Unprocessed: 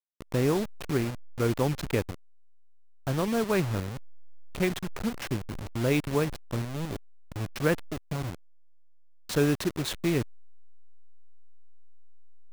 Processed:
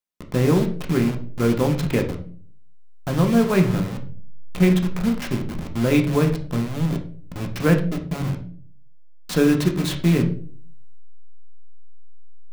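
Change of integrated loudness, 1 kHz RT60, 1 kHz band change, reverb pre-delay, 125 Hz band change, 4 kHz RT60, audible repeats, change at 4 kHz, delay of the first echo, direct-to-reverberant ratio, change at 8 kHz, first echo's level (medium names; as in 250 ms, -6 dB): +8.0 dB, 0.40 s, +5.5 dB, 3 ms, +9.5 dB, 0.35 s, no echo, +4.5 dB, no echo, 3.0 dB, +3.5 dB, no echo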